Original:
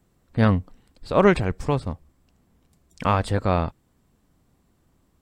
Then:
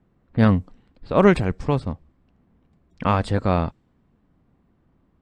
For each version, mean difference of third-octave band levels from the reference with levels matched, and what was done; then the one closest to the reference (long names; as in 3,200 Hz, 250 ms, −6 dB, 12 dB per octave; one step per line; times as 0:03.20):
1.5 dB: low-pass that shuts in the quiet parts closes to 2,300 Hz, open at −14.5 dBFS
parametric band 210 Hz +3.5 dB 1.4 octaves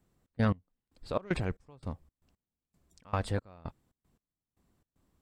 8.0 dB: soft clipping −6 dBFS, distortion −20 dB
gate pattern "xx.x...xx.xx.." 115 BPM −24 dB
level −8 dB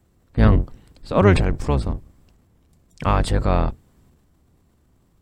3.0 dB: sub-octave generator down 1 octave, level +3 dB
transient designer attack 0 dB, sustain +6 dB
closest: first